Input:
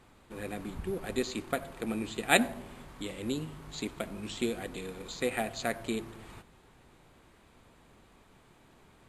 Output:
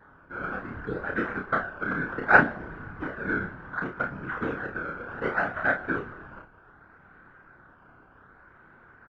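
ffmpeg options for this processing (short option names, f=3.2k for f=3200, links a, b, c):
-filter_complex "[0:a]asettb=1/sr,asplit=3[a][b][c];[a]atrim=end=2.594[d];[b]atrim=start=2.59:end=3.04,asetpts=PTS-STARTPTS,afade=t=in:d=0.004:c=qsin,afade=t=out:st=0.446:d=0.004:c=qsin,lowshelf=f=320:g=8[e];[c]atrim=start=3.036[f];[d][e]acrossfade=d=0.004:c1=hsin:c2=qsin[g];[g][f]acrossfade=d=0.004:c1=qsin:c2=hsin,acrusher=samples=16:mix=1:aa=0.000001:lfo=1:lforange=16:lforate=0.66,afftfilt=real='hypot(re,im)*cos(2*PI*random(0))':imag='hypot(re,im)*sin(2*PI*random(1))':win_size=512:overlap=0.75,lowpass=f=1.5k:t=q:w=9,aecho=1:1:31|53:0.631|0.266,volume=5.5dB"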